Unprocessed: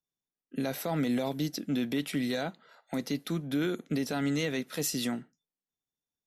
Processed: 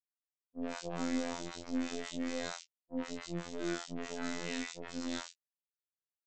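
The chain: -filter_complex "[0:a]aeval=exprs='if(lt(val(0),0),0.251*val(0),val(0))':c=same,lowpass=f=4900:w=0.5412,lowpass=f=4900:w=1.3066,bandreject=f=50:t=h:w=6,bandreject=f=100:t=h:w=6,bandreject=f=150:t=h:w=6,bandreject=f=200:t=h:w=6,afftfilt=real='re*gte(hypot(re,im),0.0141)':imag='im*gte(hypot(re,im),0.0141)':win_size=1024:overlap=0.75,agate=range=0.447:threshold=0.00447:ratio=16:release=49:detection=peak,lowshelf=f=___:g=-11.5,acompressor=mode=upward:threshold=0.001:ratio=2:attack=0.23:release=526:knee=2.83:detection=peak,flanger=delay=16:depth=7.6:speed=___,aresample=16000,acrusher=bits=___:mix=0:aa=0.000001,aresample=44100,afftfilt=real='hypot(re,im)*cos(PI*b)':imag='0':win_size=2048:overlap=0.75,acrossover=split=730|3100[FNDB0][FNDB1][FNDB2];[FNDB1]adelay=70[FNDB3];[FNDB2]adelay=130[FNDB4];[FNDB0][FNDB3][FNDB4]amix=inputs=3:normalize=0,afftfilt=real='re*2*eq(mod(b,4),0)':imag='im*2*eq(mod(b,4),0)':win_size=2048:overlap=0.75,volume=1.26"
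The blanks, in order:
160, 2.5, 6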